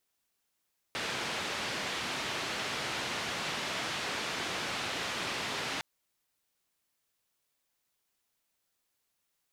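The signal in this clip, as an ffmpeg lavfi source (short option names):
-f lavfi -i "anoisesrc=c=white:d=4.86:r=44100:seed=1,highpass=f=99,lowpass=f=3500,volume=-23dB"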